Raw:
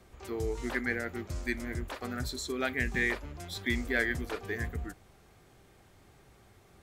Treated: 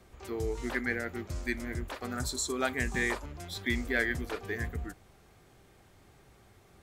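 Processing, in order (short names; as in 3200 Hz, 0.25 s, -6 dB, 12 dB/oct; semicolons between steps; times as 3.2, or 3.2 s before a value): 2.12–3.26 graphic EQ 1000/2000/8000 Hz +7/-4/+9 dB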